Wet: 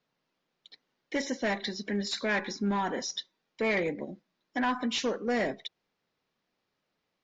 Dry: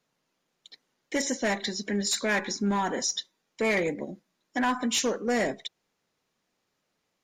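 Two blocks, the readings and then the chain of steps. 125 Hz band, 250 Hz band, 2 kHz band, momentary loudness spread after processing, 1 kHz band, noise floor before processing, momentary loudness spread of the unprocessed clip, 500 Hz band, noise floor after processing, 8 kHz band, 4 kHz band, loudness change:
-2.5 dB, -2.5 dB, -2.5 dB, 10 LU, -2.5 dB, -79 dBFS, 9 LU, -2.5 dB, -82 dBFS, -11.0 dB, -3.5 dB, -3.0 dB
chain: low-pass 5.2 kHz 24 dB/octave; trim -2.5 dB

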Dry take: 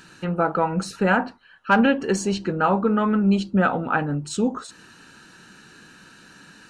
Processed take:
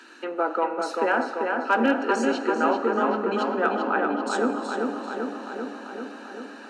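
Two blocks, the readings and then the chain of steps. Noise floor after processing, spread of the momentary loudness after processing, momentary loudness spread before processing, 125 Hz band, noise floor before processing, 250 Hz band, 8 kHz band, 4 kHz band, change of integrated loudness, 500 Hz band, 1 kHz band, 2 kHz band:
-42 dBFS, 12 LU, 7 LU, under -15 dB, -50 dBFS, -5.0 dB, -7.0 dB, -3.0 dB, -3.0 dB, +0.5 dB, 0.0 dB, -1.0 dB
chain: steep high-pass 230 Hz 96 dB/octave; treble shelf 6.1 kHz -12 dB; in parallel at +0.5 dB: compression, threshold -33 dBFS, peak gain reduction 18 dB; on the sum: hard clipper -7 dBFS, distortion -37 dB; on a send: filtered feedback delay 391 ms, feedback 73%, low-pass 3.4 kHz, level -3.5 dB; on the sum: plate-style reverb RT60 2.9 s, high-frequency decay 0.8×, DRR 11 dB; trim -4.5 dB

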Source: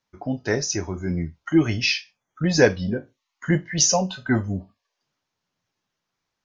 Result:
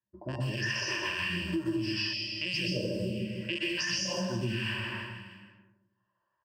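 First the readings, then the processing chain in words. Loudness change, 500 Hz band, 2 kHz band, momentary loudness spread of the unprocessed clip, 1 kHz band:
-9.0 dB, -12.5 dB, -4.5 dB, 12 LU, -10.5 dB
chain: rattle on loud lows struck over -28 dBFS, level -10 dBFS; high-pass 64 Hz; plate-style reverb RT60 1.2 s, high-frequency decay 0.6×, pre-delay 110 ms, DRR -8.5 dB; phase shifter stages 2, 0.76 Hz, lowest notch 160–2400 Hz; feedback comb 460 Hz, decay 0.63 s, mix 70%; level-controlled noise filter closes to 820 Hz, open at -26 dBFS; rippled EQ curve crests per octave 1.3, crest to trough 17 dB; feedback delay 157 ms, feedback 42%, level -12 dB; time-frequency box 2.13–3.78 s, 630–1900 Hz -19 dB; peaking EQ 1.3 kHz +4.5 dB 1 oct; compression 6:1, threshold -30 dBFS, peak gain reduction 17 dB; tape noise reduction on one side only encoder only

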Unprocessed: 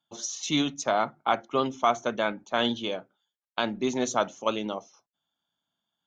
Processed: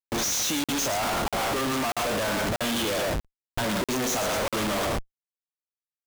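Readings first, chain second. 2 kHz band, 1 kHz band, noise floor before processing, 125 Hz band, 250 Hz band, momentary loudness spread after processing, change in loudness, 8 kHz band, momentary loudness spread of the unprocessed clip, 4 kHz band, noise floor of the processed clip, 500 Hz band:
+4.0 dB, -0.5 dB, under -85 dBFS, +7.0 dB, +1.0 dB, 5 LU, +2.0 dB, +8.0 dB, 8 LU, +3.0 dB, under -85 dBFS, +0.5 dB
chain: spectral sustain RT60 0.35 s; compression, threshold -25 dBFS, peak gain reduction 9 dB; fuzz box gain 37 dB, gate -43 dBFS; thinning echo 114 ms, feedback 17%, high-pass 400 Hz, level -8 dB; Schmitt trigger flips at -32 dBFS; crackling interface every 0.64 s, samples 2048, zero, from 0.64 s; trim -8 dB

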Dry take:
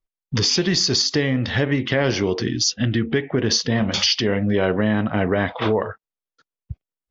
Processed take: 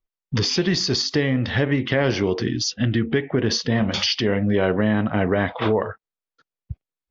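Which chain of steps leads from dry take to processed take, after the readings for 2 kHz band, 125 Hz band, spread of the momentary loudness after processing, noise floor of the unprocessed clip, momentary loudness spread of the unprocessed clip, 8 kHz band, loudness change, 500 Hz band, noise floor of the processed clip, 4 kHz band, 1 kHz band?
-1.0 dB, 0.0 dB, 4 LU, under -85 dBFS, 5 LU, no reading, -1.5 dB, 0.0 dB, under -85 dBFS, -3.5 dB, -0.5 dB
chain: distance through air 95 m

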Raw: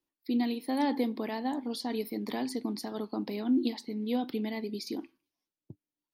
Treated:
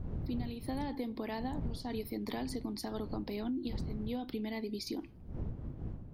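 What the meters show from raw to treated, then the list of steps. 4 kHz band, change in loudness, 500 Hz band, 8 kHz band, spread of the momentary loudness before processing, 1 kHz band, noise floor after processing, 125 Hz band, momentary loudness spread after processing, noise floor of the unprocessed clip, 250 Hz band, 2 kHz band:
-5.5 dB, -6.5 dB, -5.5 dB, -3.5 dB, 7 LU, -7.0 dB, -49 dBFS, no reading, 5 LU, under -85 dBFS, -6.5 dB, -5.5 dB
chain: wind noise 140 Hz -35 dBFS; compression 6:1, threshold -34 dBFS, peak gain reduction 14 dB

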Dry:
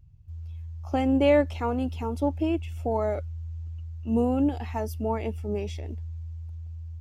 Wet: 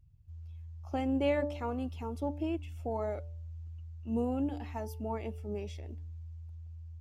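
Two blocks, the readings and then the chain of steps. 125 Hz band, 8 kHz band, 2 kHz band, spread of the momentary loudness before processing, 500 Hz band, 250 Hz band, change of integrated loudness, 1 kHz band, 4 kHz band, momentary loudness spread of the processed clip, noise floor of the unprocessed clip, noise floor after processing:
-8.0 dB, no reading, -8.0 dB, 17 LU, -9.0 dB, -8.5 dB, -8.5 dB, -8.0 dB, -8.0 dB, 16 LU, -38 dBFS, -46 dBFS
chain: de-hum 146.1 Hz, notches 8; trim -8 dB

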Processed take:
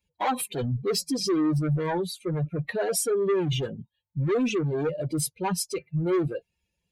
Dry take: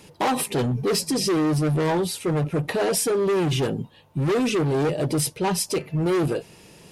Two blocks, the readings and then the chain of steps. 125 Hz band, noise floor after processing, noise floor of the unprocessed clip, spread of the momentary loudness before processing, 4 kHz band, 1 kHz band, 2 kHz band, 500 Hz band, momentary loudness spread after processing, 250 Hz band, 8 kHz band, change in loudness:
-3.5 dB, -82 dBFS, -52 dBFS, 4 LU, -4.5 dB, -4.5 dB, -5.5 dB, -4.0 dB, 6 LU, -4.0 dB, -4.0 dB, -4.0 dB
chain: expander on every frequency bin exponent 2

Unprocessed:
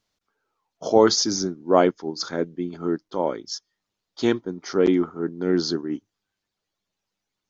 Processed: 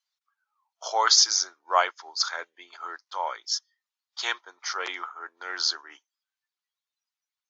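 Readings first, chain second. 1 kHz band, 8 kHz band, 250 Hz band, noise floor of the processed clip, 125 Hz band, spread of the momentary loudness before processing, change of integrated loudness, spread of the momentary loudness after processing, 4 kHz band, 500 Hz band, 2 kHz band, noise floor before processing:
+0.5 dB, no reading, -32.5 dB, under -85 dBFS, under -40 dB, 14 LU, -2.0 dB, 21 LU, +4.5 dB, -15.5 dB, +4.5 dB, -83 dBFS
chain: high-pass 930 Hz 24 dB/octave; spectral noise reduction 13 dB; trim +4.5 dB

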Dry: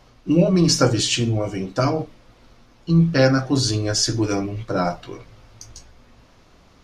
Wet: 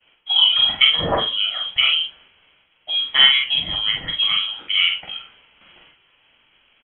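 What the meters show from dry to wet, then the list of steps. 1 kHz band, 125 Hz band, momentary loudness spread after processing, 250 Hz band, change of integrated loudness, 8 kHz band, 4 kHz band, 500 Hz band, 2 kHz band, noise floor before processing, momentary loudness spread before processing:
-1.5 dB, -19.0 dB, 10 LU, -19.5 dB, +3.5 dB, under -40 dB, +13.5 dB, -10.5 dB, +8.5 dB, -53 dBFS, 11 LU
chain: high-pass 340 Hz 24 dB/octave; expander -50 dBFS; doubling 45 ms -3 dB; frequency inversion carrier 3.6 kHz; trim +4 dB

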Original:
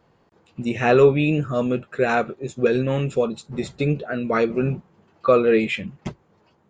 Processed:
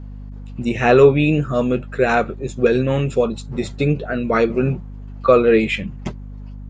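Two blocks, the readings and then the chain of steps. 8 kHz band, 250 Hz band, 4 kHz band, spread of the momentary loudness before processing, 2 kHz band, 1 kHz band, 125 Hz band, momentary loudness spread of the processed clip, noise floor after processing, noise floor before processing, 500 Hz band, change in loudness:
no reading, +3.5 dB, +3.5 dB, 14 LU, +3.5 dB, +3.5 dB, +4.0 dB, 19 LU, -33 dBFS, -61 dBFS, +3.5 dB, +3.5 dB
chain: hum 50 Hz, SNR 15 dB; trim +3.5 dB

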